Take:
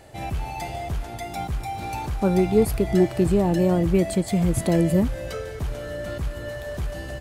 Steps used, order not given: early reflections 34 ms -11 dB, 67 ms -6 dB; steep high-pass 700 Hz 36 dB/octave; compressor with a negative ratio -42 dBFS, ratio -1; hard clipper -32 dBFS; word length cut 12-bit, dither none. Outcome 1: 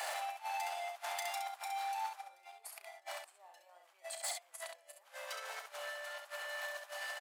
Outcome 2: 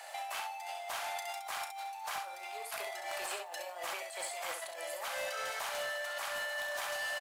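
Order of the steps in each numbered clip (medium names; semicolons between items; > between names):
word length cut > compressor with a negative ratio > early reflections > hard clipper > steep high-pass; steep high-pass > compressor with a negative ratio > word length cut > early reflections > hard clipper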